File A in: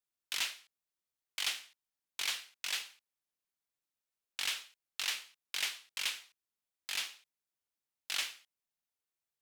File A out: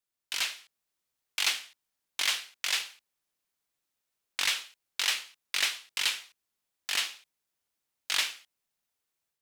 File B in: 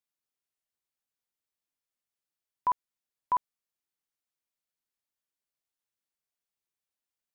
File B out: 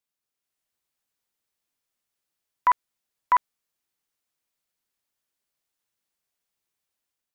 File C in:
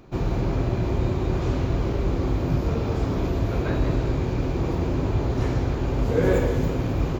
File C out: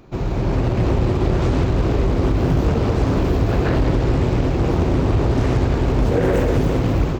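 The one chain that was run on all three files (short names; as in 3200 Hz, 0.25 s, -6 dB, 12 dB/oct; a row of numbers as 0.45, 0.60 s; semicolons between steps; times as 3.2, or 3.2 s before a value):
limiter -16 dBFS; AGC gain up to 5 dB; Doppler distortion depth 0.54 ms; gain +2.5 dB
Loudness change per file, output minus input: +7.0, +7.5, +6.0 LU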